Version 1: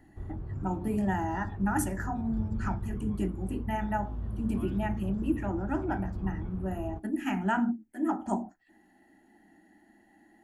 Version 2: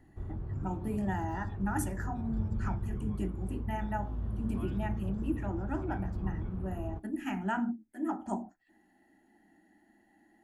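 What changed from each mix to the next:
speech -4.5 dB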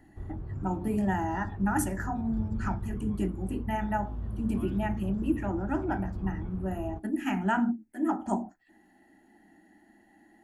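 speech +5.5 dB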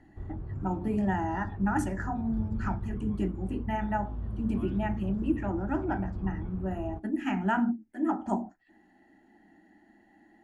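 master: add distance through air 76 m

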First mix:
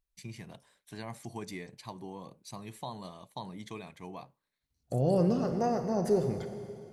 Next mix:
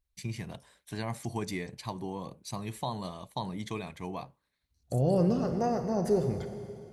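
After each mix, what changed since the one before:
first voice +5.5 dB; master: add peaking EQ 65 Hz +8.5 dB 1.2 oct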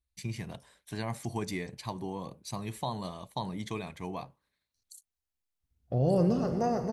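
second voice: entry +1.00 s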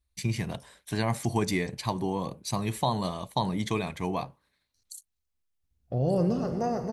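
first voice +7.5 dB

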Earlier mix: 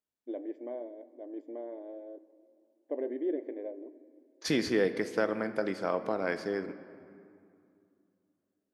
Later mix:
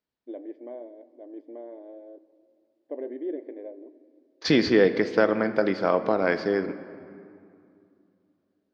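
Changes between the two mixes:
second voice +8.5 dB; master: add Chebyshev low-pass 4.7 kHz, order 3

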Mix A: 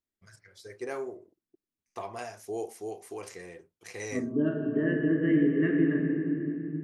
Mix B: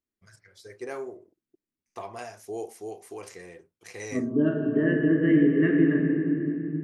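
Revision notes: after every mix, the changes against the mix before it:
second voice +4.0 dB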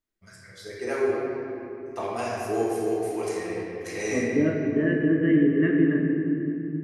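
first voice: send on

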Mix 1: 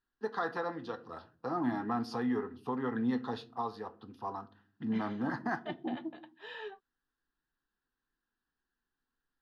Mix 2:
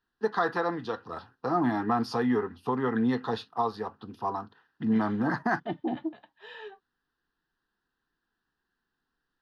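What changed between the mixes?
first voice +8.5 dB; reverb: off

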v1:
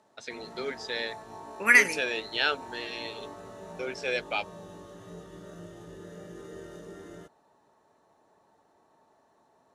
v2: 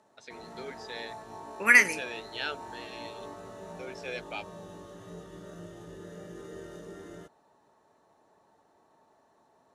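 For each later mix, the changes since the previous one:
first voice -8.0 dB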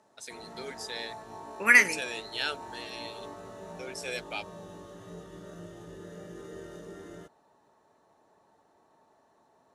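first voice: remove distance through air 180 m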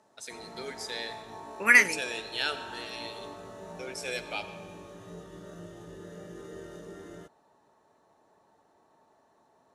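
reverb: on, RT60 1.6 s

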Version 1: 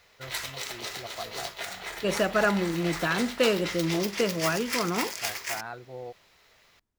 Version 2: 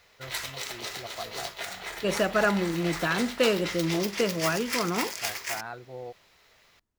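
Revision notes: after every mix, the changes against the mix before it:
no change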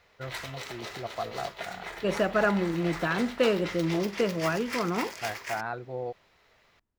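first voice +5.5 dB; master: add treble shelf 3.7 kHz -11.5 dB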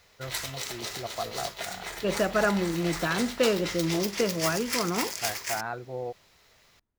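background: add tone controls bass +4 dB, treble +13 dB

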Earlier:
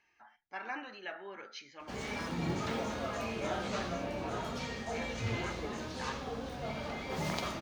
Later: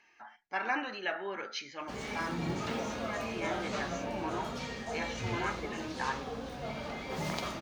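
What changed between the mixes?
first voice +8.0 dB; master: add peaking EQ 88 Hz -5.5 dB 0.42 oct

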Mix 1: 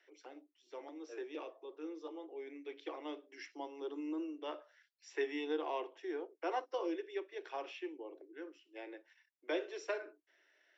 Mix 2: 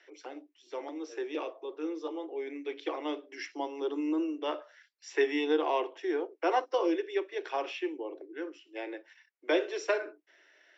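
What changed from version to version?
first voice +9.5 dB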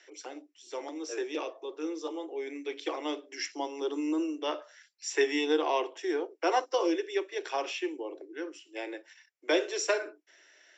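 second voice +10.0 dB; master: remove distance through air 190 m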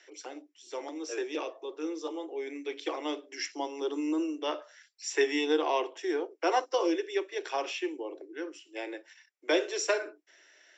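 second voice: remove distance through air 280 m

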